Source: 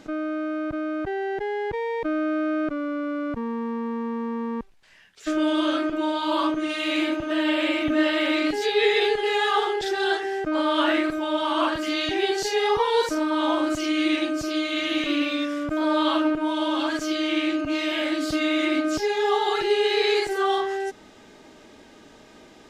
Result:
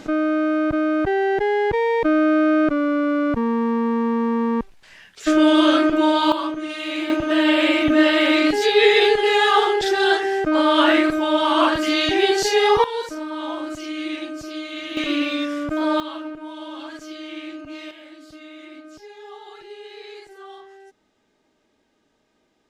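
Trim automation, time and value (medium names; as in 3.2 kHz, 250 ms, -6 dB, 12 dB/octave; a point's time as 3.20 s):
+8 dB
from 6.32 s -2 dB
from 7.10 s +6 dB
from 12.84 s -5.5 dB
from 14.97 s +2 dB
from 16.00 s -10 dB
from 17.91 s -18 dB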